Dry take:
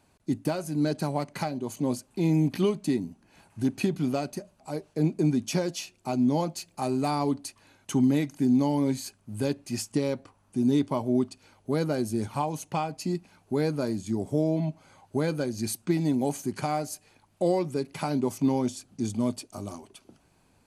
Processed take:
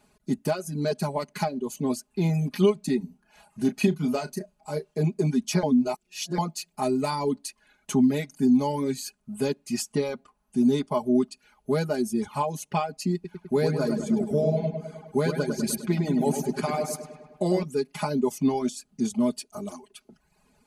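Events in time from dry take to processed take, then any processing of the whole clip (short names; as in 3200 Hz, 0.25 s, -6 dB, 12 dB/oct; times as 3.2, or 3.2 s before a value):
2.97–4.99 doubler 33 ms -7 dB
5.63–6.38 reverse
13.14–17.63 darkening echo 0.102 s, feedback 66%, low-pass 4200 Hz, level -3.5 dB
whole clip: reverb removal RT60 0.86 s; comb 4.8 ms, depth 95%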